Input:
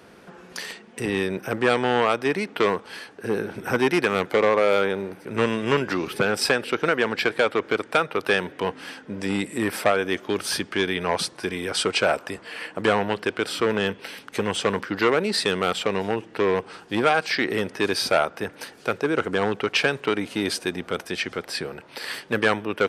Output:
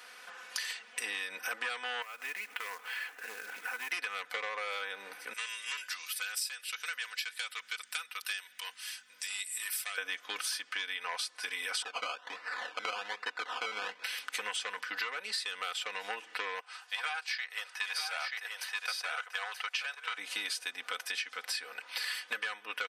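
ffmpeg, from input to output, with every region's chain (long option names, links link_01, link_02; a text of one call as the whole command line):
ffmpeg -i in.wav -filter_complex "[0:a]asettb=1/sr,asplit=3[link_01][link_02][link_03];[link_01]atrim=end=2.024[link_04];[link_02]atrim=start=2.02:end=3.92,asetpts=PTS-STARTPTS,afade=type=in:duration=0.004:curve=qsin,afade=type=out:start_time=1.896:duration=0.004:curve=qsin,highshelf=frequency=3400:width_type=q:width=1.5:gain=-9.5,acompressor=threshold=-37dB:ratio=3:attack=3.2:release=140:knee=1:detection=peak,acrusher=bits=4:mode=log:mix=0:aa=0.000001[link_05];[link_03]atrim=start=3.916[link_06];[link_04][link_05]acrossfade=duration=0.004:curve1=hsin:curve2=qsin[link_07];[link_07][link_06]acrossfade=duration=0.004:curve1=qsin:curve2=hsin,asettb=1/sr,asplit=3[link_08][link_09][link_10];[link_08]atrim=end=5.334[link_11];[link_09]atrim=start=5.33:end=9.98,asetpts=PTS-STARTPTS,afade=type=in:duration=0.004:curve=qsin,afade=type=out:start_time=4.646:duration=0.004:curve=qsin,aderivative,aeval=exprs='val(0)+0.00282*(sin(2*PI*50*n/s)+sin(2*PI*2*50*n/s)/2+sin(2*PI*3*50*n/s)/3+sin(2*PI*4*50*n/s)/4+sin(2*PI*5*50*n/s)/5)':channel_layout=same[link_12];[link_10]atrim=start=9.976[link_13];[link_11][link_12]acrossfade=duration=0.004:curve1=hsin:curve2=qsin[link_14];[link_14][link_13]acrossfade=duration=0.004:curve1=qsin:curve2=hsin,asettb=1/sr,asplit=3[link_15][link_16][link_17];[link_15]atrim=end=11.824[link_18];[link_16]atrim=start=11.82:end=14.04,asetpts=PTS-STARTPTS,afade=type=in:duration=0.004:curve=qsin,afade=type=out:start_time=2.216:duration=0.004:curve=qsin,acrusher=samples=19:mix=1:aa=0.000001:lfo=1:lforange=11.4:lforate=1.2,highpass=150,lowpass=3100[link_19];[link_17]atrim=start=14.036[link_20];[link_18][link_19]acrossfade=duration=0.004:curve1=hsin:curve2=qsin[link_21];[link_21][link_20]acrossfade=duration=0.004:curve1=qsin:curve2=hsin,asettb=1/sr,asplit=3[link_22][link_23][link_24];[link_22]atrim=end=16.604[link_25];[link_23]atrim=start=16.6:end=20.18,asetpts=PTS-STARTPTS,afade=type=in:duration=0.004:curve=qsin,afade=type=out:start_time=3.576:duration=0.004:curve=qsin,highpass=frequency=600:width=0.5412,highpass=frequency=600:width=1.3066,aecho=1:1:930:0.596,atrim=end_sample=157878,agate=range=-6dB:threshold=-33dB:ratio=16:release=100:detection=peak[link_26];[link_24]atrim=start=20.176[link_27];[link_25][link_26]acrossfade=duration=0.004:curve1=hsin:curve2=qsin[link_28];[link_28][link_27]acrossfade=duration=0.004:curve1=qsin:curve2=hsin,highpass=1400,aecho=1:1:4:0.73,acompressor=threshold=-36dB:ratio=12,volume=3dB" out.wav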